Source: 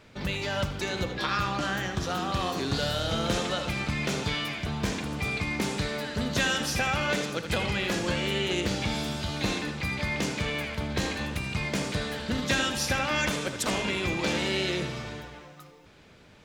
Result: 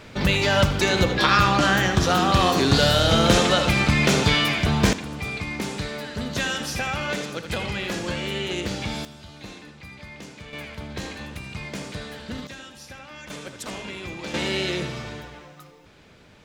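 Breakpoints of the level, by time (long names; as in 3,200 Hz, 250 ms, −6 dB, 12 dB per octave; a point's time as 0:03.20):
+10.5 dB
from 0:04.93 0 dB
from 0:09.05 −11.5 dB
from 0:10.53 −4 dB
from 0:12.47 −14.5 dB
from 0:13.30 −6 dB
from 0:14.34 +2.5 dB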